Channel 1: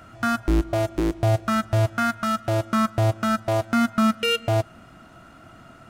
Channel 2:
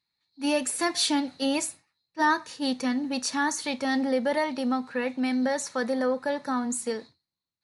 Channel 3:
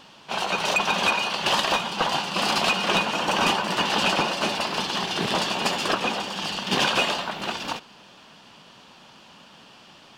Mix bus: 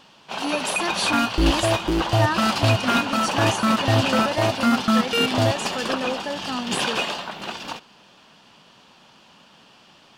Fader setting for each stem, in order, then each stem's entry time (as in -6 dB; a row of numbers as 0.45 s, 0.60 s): +0.5 dB, -1.5 dB, -2.5 dB; 0.90 s, 0.00 s, 0.00 s